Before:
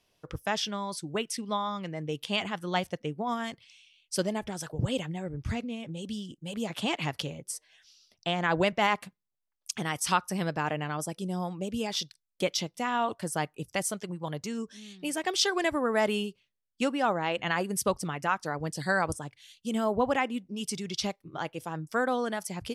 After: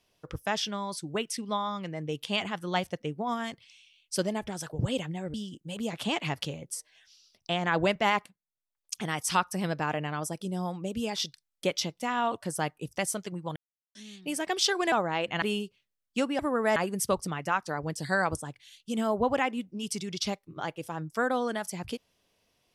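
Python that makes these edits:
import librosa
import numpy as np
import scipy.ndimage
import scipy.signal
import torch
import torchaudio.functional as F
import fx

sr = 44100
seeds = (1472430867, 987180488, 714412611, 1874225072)

y = fx.edit(x, sr, fx.cut(start_s=5.34, length_s=0.77),
    fx.fade_in_from(start_s=9.03, length_s=0.84, floor_db=-17.0),
    fx.silence(start_s=14.33, length_s=0.39),
    fx.swap(start_s=15.69, length_s=0.37, other_s=17.03, other_length_s=0.5), tone=tone)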